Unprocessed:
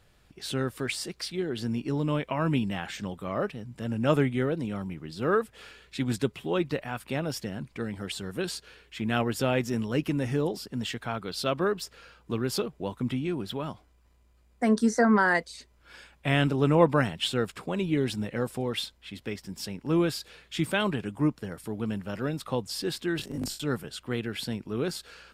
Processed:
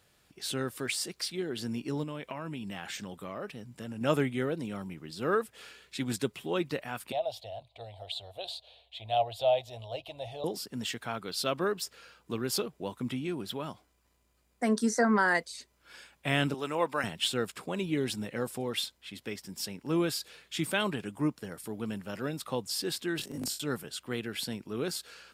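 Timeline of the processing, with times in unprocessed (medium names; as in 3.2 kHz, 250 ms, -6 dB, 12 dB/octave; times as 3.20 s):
2.03–4.01 s: compression, threshold -30 dBFS
7.12–10.44 s: FFT filter 110 Hz 0 dB, 170 Hz -28 dB, 290 Hz -24 dB, 420 Hz -15 dB, 670 Hz +13 dB, 1 kHz -7 dB, 1.5 kHz -24 dB, 3.8 kHz +6 dB, 5.4 kHz -17 dB
16.54–17.04 s: high-pass 840 Hz 6 dB/octave
whole clip: high-pass 150 Hz 6 dB/octave; treble shelf 4.9 kHz +7.5 dB; trim -3 dB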